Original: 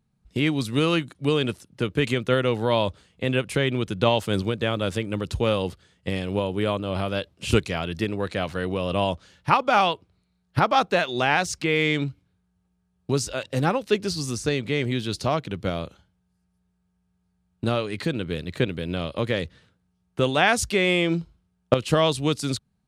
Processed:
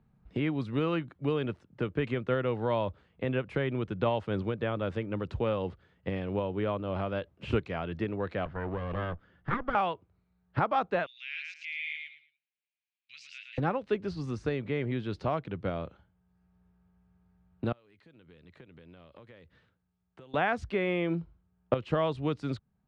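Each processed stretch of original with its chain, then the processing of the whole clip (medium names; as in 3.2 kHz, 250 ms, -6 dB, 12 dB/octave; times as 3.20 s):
8.45–9.75 s: comb filter that takes the minimum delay 0.61 ms + tape spacing loss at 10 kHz 21 dB
11.06–13.58 s: elliptic high-pass 2.3 kHz, stop band 60 dB + peaking EQ 9.5 kHz -10.5 dB 0.58 oct + feedback delay 111 ms, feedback 20%, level -4 dB
17.72–20.34 s: pre-emphasis filter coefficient 0.8 + compression 4:1, threshold -54 dBFS
whole clip: low-pass 1.8 kHz 12 dB/octave; peaking EQ 200 Hz -2 dB 2.2 oct; three bands compressed up and down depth 40%; trim -5.5 dB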